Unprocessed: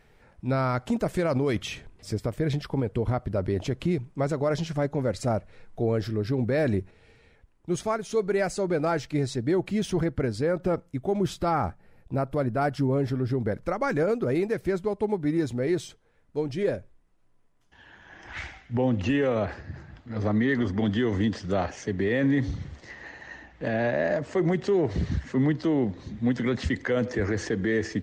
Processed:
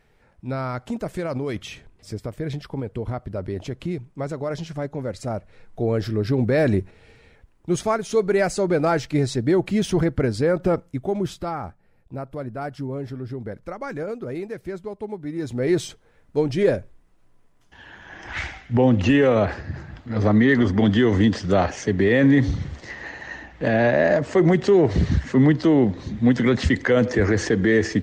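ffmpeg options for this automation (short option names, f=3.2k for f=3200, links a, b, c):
-af "volume=18dB,afade=t=in:st=5.3:d=1.03:silence=0.421697,afade=t=out:st=10.68:d=0.91:silence=0.298538,afade=t=in:st=15.35:d=0.49:silence=0.237137"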